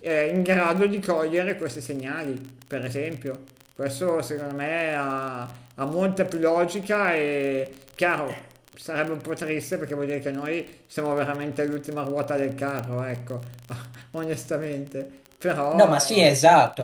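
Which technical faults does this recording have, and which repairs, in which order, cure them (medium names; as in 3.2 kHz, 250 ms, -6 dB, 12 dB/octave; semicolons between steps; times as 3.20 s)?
crackle 29 per s -29 dBFS
12.79 s: pop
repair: de-click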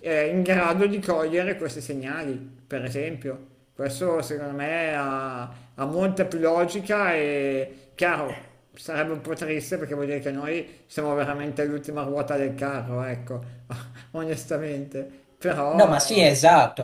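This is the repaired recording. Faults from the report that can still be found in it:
nothing left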